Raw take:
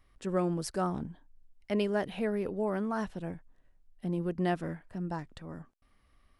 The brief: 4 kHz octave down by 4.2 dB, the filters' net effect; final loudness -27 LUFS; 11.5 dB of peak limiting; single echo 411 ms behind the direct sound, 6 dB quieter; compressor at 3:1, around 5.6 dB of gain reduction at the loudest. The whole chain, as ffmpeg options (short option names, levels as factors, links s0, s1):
-af "equalizer=f=4000:t=o:g=-6.5,acompressor=threshold=0.0251:ratio=3,alimiter=level_in=2.82:limit=0.0631:level=0:latency=1,volume=0.355,aecho=1:1:411:0.501,volume=5.96"